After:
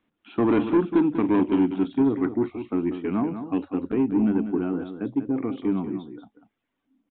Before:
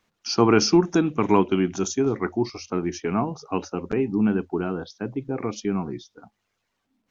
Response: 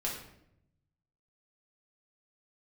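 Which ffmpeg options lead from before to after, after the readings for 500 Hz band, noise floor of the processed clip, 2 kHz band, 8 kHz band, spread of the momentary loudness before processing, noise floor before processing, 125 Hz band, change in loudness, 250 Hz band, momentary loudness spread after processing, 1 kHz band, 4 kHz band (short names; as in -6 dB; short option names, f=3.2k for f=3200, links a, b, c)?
-3.5 dB, -80 dBFS, -6.5 dB, n/a, 11 LU, -77 dBFS, -4.5 dB, -0.5 dB, +1.5 dB, 8 LU, -6.0 dB, under -15 dB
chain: -af "equalizer=f=280:t=o:w=0.64:g=13.5,aresample=8000,asoftclip=type=tanh:threshold=-9dB,aresample=44100,aecho=1:1:193:0.335,volume=-5.5dB"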